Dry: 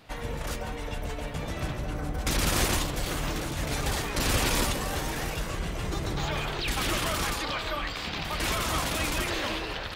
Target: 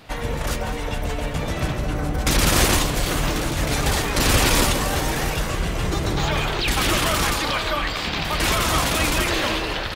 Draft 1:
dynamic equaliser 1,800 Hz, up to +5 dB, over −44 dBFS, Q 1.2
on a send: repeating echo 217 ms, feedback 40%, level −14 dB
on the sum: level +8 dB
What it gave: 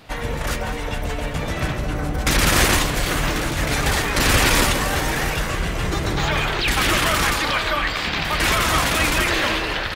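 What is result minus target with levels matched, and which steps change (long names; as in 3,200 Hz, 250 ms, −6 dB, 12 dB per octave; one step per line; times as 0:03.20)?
2,000 Hz band +2.5 dB
remove: dynamic equaliser 1,800 Hz, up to +5 dB, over −44 dBFS, Q 1.2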